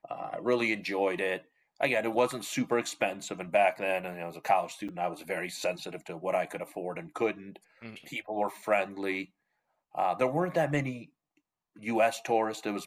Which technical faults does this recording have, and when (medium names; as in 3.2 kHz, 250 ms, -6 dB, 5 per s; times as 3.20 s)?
4.88–4.89 s: dropout 6.7 ms